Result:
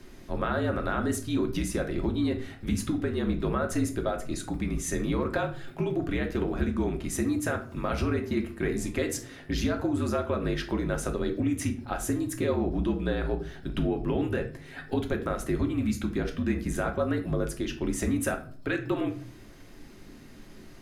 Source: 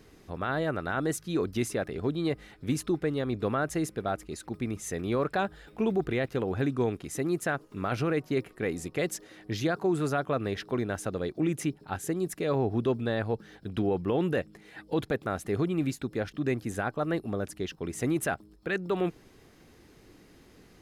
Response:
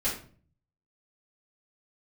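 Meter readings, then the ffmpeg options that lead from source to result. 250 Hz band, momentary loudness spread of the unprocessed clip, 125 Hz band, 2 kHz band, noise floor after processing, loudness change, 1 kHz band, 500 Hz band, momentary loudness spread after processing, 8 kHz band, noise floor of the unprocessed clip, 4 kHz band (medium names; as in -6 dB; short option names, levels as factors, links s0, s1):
+2.5 dB, 7 LU, +1.5 dB, 0.0 dB, -48 dBFS, +1.0 dB, -1.0 dB, -1.0 dB, 5 LU, +3.0 dB, -57 dBFS, +1.5 dB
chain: -filter_complex "[0:a]acompressor=threshold=0.0316:ratio=6,afreqshift=-53,asplit=2[s0][s1];[1:a]atrim=start_sample=2205[s2];[s1][s2]afir=irnorm=-1:irlink=0,volume=0.355[s3];[s0][s3]amix=inputs=2:normalize=0,volume=1.26"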